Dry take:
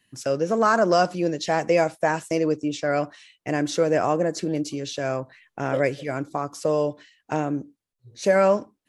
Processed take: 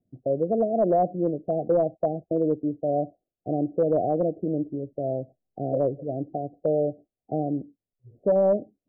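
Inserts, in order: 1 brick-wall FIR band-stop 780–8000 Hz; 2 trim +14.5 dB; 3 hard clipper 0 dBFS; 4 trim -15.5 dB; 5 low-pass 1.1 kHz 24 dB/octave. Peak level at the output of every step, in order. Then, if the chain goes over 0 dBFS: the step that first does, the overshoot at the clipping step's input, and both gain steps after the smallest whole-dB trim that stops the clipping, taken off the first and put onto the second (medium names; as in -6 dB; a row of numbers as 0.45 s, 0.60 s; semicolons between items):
-9.0 dBFS, +5.5 dBFS, 0.0 dBFS, -15.5 dBFS, -14.0 dBFS; step 2, 5.5 dB; step 2 +8.5 dB, step 4 -9.5 dB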